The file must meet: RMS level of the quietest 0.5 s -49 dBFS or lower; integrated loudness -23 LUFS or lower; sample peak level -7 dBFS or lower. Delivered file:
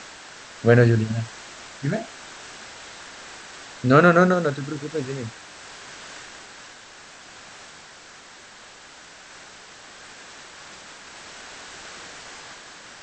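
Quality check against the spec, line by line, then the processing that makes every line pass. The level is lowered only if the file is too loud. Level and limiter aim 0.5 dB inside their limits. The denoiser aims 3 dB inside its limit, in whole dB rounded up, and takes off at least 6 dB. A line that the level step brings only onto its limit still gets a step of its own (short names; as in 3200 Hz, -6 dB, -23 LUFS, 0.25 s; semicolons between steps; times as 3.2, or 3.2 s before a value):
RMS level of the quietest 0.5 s -46 dBFS: fail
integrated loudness -20.5 LUFS: fail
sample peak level -2.5 dBFS: fail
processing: denoiser 6 dB, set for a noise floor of -46 dBFS; gain -3 dB; limiter -7.5 dBFS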